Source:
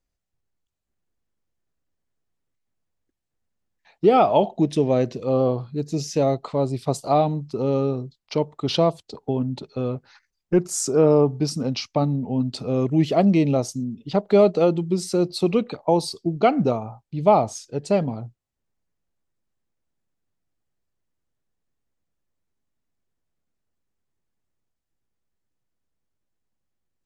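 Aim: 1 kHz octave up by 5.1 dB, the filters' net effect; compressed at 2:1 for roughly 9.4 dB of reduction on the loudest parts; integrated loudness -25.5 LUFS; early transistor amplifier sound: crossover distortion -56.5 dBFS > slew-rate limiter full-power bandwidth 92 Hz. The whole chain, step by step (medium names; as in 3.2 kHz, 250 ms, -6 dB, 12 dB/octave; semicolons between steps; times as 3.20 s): peaking EQ 1 kHz +7.5 dB; compression 2:1, threshold -26 dBFS; crossover distortion -56.5 dBFS; slew-rate limiter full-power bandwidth 92 Hz; trim +2 dB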